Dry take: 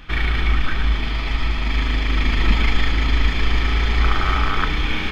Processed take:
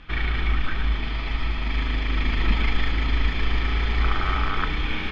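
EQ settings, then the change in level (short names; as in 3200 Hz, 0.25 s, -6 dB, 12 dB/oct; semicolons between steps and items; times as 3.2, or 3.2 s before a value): LPF 4600 Hz 12 dB/oct; -4.5 dB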